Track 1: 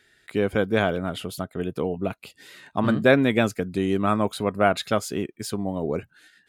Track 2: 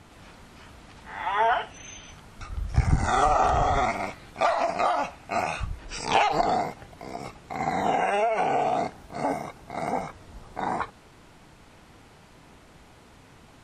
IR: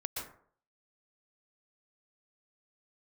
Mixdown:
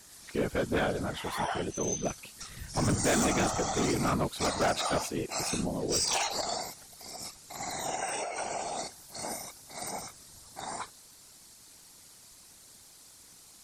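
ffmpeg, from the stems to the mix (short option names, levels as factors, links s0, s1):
-filter_complex "[0:a]volume=1[s0];[1:a]aexciter=amount=5.4:drive=4.8:freq=4100,highshelf=f=2000:g=10,volume=0.447[s1];[s0][s1]amix=inputs=2:normalize=0,afftfilt=real='hypot(re,im)*cos(2*PI*random(0))':imag='hypot(re,im)*sin(2*PI*random(1))':win_size=512:overlap=0.75,asoftclip=type=hard:threshold=0.075"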